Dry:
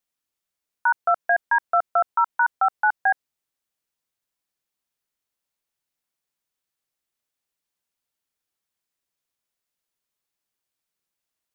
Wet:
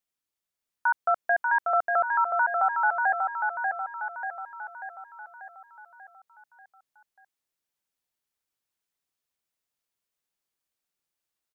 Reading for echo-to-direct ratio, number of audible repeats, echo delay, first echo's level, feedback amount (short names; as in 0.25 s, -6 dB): -2.5 dB, 6, 0.589 s, -4.0 dB, 54%